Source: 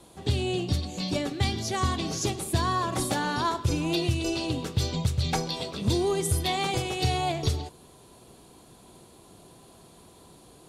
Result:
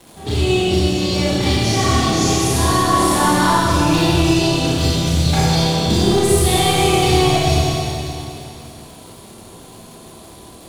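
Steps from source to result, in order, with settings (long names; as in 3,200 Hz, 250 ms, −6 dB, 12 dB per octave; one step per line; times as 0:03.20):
hard clipping −21.5 dBFS, distortion −15 dB
four-comb reverb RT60 2.9 s, combs from 27 ms, DRR −9.5 dB
surface crackle 370 per second −38 dBFS
level +3 dB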